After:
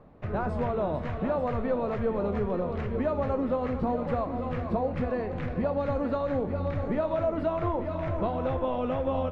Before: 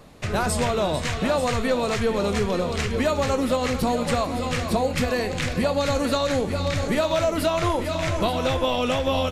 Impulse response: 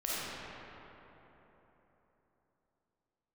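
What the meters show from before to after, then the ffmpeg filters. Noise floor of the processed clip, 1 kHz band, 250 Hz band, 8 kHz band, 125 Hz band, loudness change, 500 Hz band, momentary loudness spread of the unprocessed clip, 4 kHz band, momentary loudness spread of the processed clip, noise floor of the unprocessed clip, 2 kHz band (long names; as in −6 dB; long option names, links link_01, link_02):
−34 dBFS, −6.5 dB, −5.0 dB, below −35 dB, −5.0 dB, −6.0 dB, −5.0 dB, 3 LU, below −20 dB, 3 LU, −29 dBFS, −13.5 dB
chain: -filter_complex "[0:a]lowpass=1200,asplit=2[link_01][link_02];[1:a]atrim=start_sample=2205,adelay=56[link_03];[link_02][link_03]afir=irnorm=-1:irlink=0,volume=-22.5dB[link_04];[link_01][link_04]amix=inputs=2:normalize=0,volume=-5dB"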